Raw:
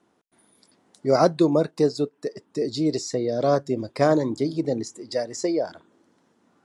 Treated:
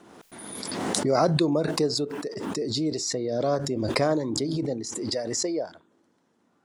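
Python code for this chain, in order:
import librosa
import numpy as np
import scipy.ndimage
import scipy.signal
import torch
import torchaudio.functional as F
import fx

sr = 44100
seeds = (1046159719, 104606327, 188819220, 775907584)

y = fx.pre_swell(x, sr, db_per_s=29.0)
y = y * librosa.db_to_amplitude(-5.0)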